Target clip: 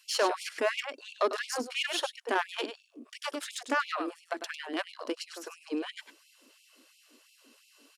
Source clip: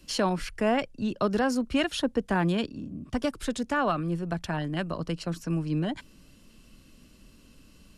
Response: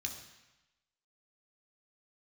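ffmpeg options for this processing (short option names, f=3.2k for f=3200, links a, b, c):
-af "aecho=1:1:100:0.335,aeval=exprs='0.237*(cos(1*acos(clip(val(0)/0.237,-1,1)))-cos(1*PI/2))+0.0211*(cos(6*acos(clip(val(0)/0.237,-1,1)))-cos(6*PI/2))':c=same,afftfilt=real='re*gte(b*sr/1024,220*pow(2200/220,0.5+0.5*sin(2*PI*2.9*pts/sr)))':imag='im*gte(b*sr/1024,220*pow(2200/220,0.5+0.5*sin(2*PI*2.9*pts/sr)))':win_size=1024:overlap=0.75"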